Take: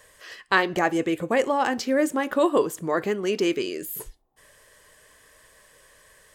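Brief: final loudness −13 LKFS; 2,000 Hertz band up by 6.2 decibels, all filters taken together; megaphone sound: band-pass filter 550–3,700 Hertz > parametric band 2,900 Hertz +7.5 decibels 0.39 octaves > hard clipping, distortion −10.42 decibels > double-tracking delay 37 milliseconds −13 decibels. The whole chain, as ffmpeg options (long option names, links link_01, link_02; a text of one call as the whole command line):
ffmpeg -i in.wav -filter_complex "[0:a]highpass=550,lowpass=3700,equalizer=frequency=2000:width_type=o:gain=7,equalizer=frequency=2900:width_type=o:width=0.39:gain=7.5,asoftclip=type=hard:threshold=-14.5dB,asplit=2[link_01][link_02];[link_02]adelay=37,volume=-13dB[link_03];[link_01][link_03]amix=inputs=2:normalize=0,volume=11.5dB" out.wav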